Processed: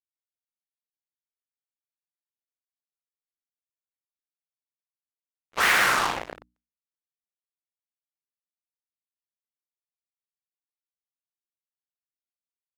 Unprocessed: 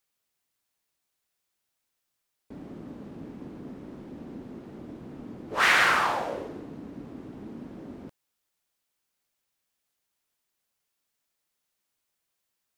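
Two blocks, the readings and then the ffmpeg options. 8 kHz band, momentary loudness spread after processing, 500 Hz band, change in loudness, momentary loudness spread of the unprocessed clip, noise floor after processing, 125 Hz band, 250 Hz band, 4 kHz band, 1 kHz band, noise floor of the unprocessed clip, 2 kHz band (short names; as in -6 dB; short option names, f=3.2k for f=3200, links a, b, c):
+5.5 dB, 16 LU, -2.5 dB, +2.5 dB, 22 LU, under -85 dBFS, -6.0 dB, -8.5 dB, +1.0 dB, -0.5 dB, -81 dBFS, 0.0 dB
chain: -af "acrusher=bits=3:mix=0:aa=0.5,bandreject=f=60:t=h:w=6,bandreject=f=120:t=h:w=6,bandreject=f=180:t=h:w=6,bandreject=f=240:t=h:w=6,bandreject=f=300:t=h:w=6"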